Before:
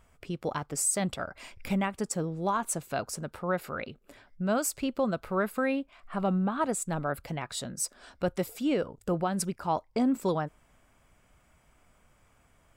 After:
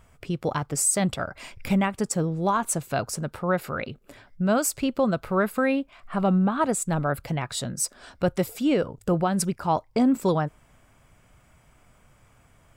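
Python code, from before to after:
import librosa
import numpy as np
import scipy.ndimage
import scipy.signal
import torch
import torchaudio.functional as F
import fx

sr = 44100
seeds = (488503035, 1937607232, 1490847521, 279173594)

y = fx.peak_eq(x, sr, hz=120.0, db=6.0, octaves=0.79)
y = F.gain(torch.from_numpy(y), 5.0).numpy()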